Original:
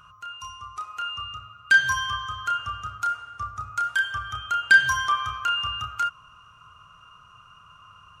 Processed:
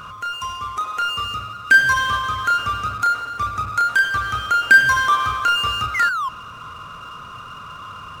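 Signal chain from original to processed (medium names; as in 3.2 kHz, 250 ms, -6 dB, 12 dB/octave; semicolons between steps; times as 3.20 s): painted sound fall, 5.94–6.29 s, 1–2.2 kHz -33 dBFS; ten-band graphic EQ 250 Hz +10 dB, 500 Hz +8 dB, 2 kHz +5 dB, 4 kHz -7 dB; power-law waveshaper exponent 0.7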